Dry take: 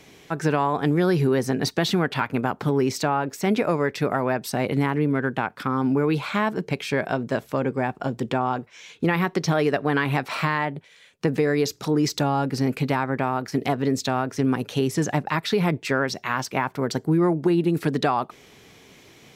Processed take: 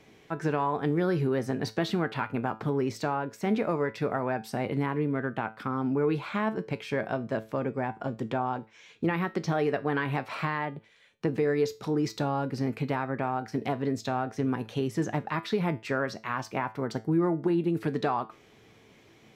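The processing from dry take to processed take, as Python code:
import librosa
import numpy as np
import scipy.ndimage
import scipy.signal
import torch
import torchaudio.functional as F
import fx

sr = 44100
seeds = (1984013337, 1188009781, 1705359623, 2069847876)

y = fx.high_shelf(x, sr, hz=3600.0, db=-9.5)
y = fx.comb_fb(y, sr, f0_hz=110.0, decay_s=0.29, harmonics='all', damping=0.0, mix_pct=60)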